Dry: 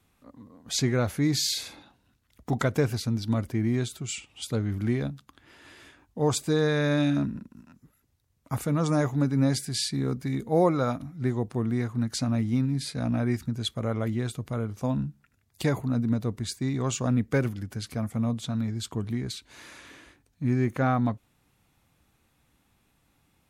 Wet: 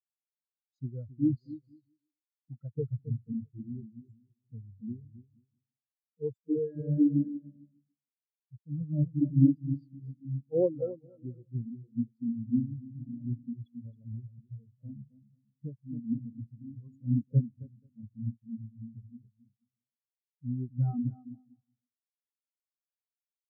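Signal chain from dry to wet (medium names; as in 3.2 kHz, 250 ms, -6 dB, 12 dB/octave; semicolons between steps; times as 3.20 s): bouncing-ball echo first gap 270 ms, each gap 0.8×, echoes 5; spectral contrast expander 4:1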